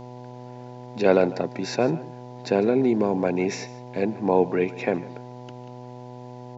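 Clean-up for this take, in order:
hum removal 123.8 Hz, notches 8
echo removal 150 ms −18.5 dB

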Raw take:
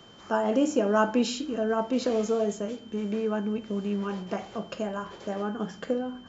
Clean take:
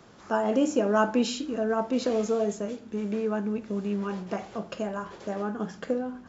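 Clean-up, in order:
notch filter 3,100 Hz, Q 30

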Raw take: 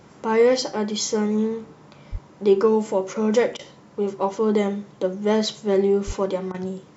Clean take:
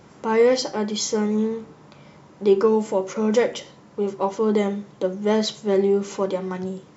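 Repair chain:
high-pass at the plosives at 0:02.11/0:06.06
repair the gap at 0:03.57/0:06.52, 21 ms

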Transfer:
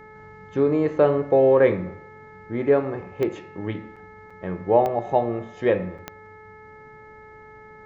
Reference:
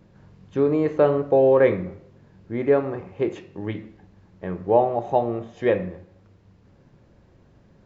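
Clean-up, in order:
click removal
hum removal 431.5 Hz, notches 5
repair the gap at 0:03.96/0:04.30/0:05.98, 5.3 ms

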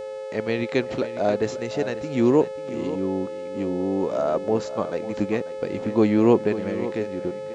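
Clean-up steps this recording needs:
hum removal 430.1 Hz, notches 22
notch filter 530 Hz, Q 30
echo removal 541 ms −13 dB

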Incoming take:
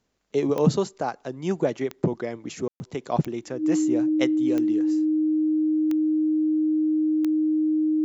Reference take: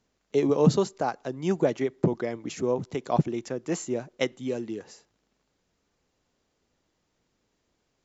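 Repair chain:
click removal
notch filter 310 Hz, Q 30
ambience match 0:02.68–0:02.80

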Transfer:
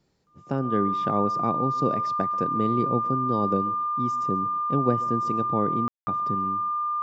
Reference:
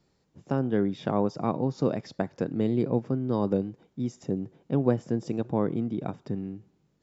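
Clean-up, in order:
notch filter 1,200 Hz, Q 30
ambience match 0:05.88–0:06.07
echo removal 136 ms −20.5 dB

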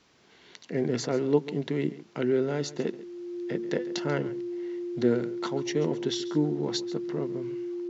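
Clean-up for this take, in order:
notch filter 350 Hz, Q 30
echo removal 138 ms −17 dB

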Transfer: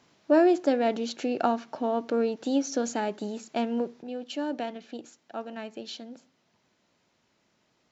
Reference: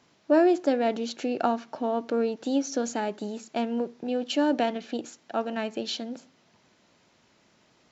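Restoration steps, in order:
level correction +7.5 dB, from 0:04.02

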